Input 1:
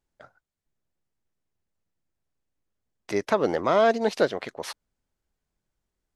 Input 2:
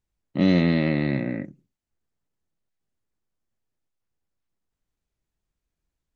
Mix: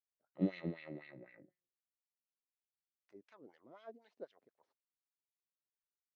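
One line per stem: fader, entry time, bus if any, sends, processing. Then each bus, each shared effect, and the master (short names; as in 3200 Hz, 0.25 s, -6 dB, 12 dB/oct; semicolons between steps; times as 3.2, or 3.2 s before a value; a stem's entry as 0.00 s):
-15.5 dB, 0.00 s, no send, low shelf 220 Hz +9.5 dB
+2.0 dB, 0.00 s, no send, bell 240 Hz -13.5 dB 0.52 oct; resonator 180 Hz, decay 0.36 s, harmonics all, mix 50%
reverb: off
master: tone controls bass +1 dB, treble +7 dB; wah 4 Hz 260–2600 Hz, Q 2; upward expander 2.5:1, over -38 dBFS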